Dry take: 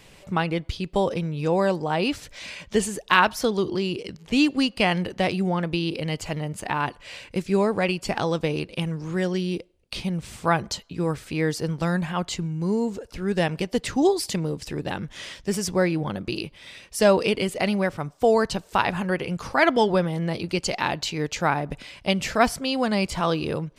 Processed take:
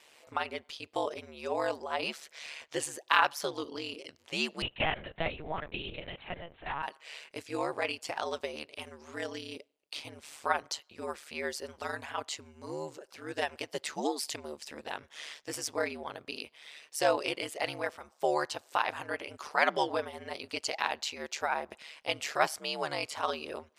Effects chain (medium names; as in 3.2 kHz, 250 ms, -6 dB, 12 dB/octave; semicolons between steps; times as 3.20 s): high-pass 550 Hz 12 dB/octave; ring modulator 74 Hz; 4.62–6.83 s: LPC vocoder at 8 kHz pitch kept; trim -3.5 dB